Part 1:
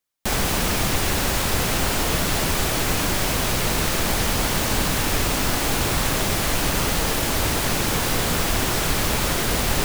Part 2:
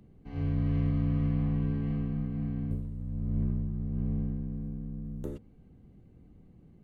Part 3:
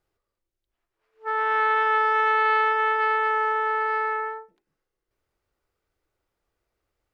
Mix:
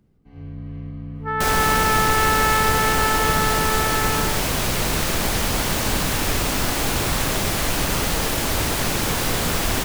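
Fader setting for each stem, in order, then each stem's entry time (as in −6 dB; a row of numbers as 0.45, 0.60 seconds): 0.0, −5.0, +1.0 decibels; 1.15, 0.00, 0.00 seconds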